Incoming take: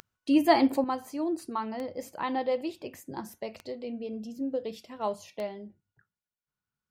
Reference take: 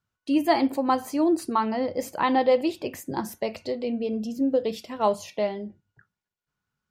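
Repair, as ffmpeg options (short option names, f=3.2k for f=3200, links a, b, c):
-af "adeclick=t=4,asetnsamples=n=441:p=0,asendcmd='0.84 volume volume 8.5dB',volume=0dB"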